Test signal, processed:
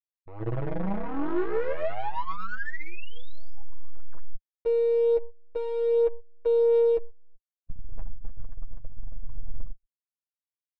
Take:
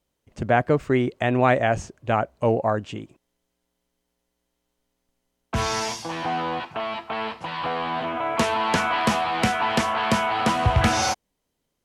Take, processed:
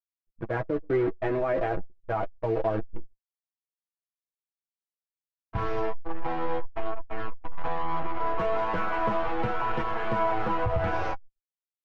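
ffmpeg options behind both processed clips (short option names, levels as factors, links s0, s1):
-filter_complex "[0:a]asplit=2[s0][s1];[s1]adelay=129,lowpass=f=1200:p=1,volume=0.1,asplit=2[s2][s3];[s3]adelay=129,lowpass=f=1200:p=1,volume=0.36,asplit=2[s4][s5];[s5]adelay=129,lowpass=f=1200:p=1,volume=0.36[s6];[s0][s2][s4][s6]amix=inputs=4:normalize=0,acrusher=bits=5:dc=4:mix=0:aa=0.000001,adynamicequalizer=threshold=0.0178:dfrequency=400:dqfactor=1.8:tfrequency=400:tqfactor=1.8:attack=5:release=100:ratio=0.375:range=3:mode=boostabove:tftype=bell,lowpass=1600,aecho=1:1:6.2:0.64,asubboost=boost=6.5:cutoff=64,anlmdn=39.8,alimiter=limit=0.211:level=0:latency=1:release=41,agate=range=0.282:threshold=0.0631:ratio=16:detection=peak,flanger=delay=8.3:depth=2.9:regen=14:speed=0.31:shape=sinusoidal,volume=0.794"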